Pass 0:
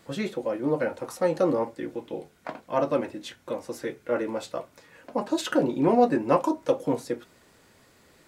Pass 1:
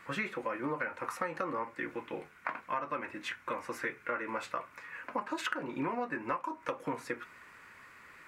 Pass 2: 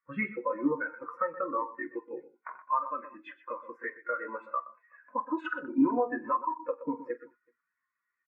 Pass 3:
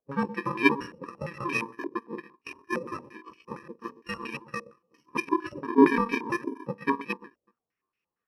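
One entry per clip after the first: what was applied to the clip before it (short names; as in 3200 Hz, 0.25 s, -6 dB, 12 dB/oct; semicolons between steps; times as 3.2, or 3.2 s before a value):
band shelf 1600 Hz +15.5 dB; compressor 16:1, threshold -25 dBFS, peak gain reduction 18 dB; gain -6 dB
tapped delay 47/94/123/210/376 ms -9.5/-16.5/-6.5/-15/-13 dB; spectral expander 2.5:1; gain +2 dB
FFT order left unsorted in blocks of 64 samples; stepped low-pass 8.7 Hz 600–2400 Hz; gain +7.5 dB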